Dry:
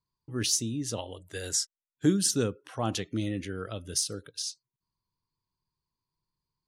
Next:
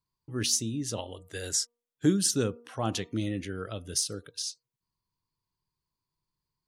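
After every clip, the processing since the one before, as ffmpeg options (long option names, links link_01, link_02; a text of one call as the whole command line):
ffmpeg -i in.wav -af "bandreject=frequency=237.5:width_type=h:width=4,bandreject=frequency=475:width_type=h:width=4,bandreject=frequency=712.5:width_type=h:width=4,bandreject=frequency=950:width_type=h:width=4,bandreject=frequency=1187.5:width_type=h:width=4" out.wav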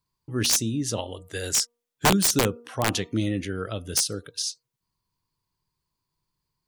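ffmpeg -i in.wav -af "aeval=exprs='(mod(7.94*val(0)+1,2)-1)/7.94':channel_layout=same,volume=5.5dB" out.wav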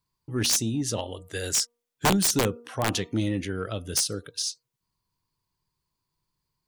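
ffmpeg -i in.wav -af "asoftclip=type=tanh:threshold=-15dB" out.wav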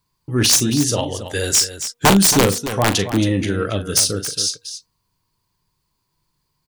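ffmpeg -i in.wav -af "aecho=1:1:40.82|274.1:0.316|0.282,volume=9dB" out.wav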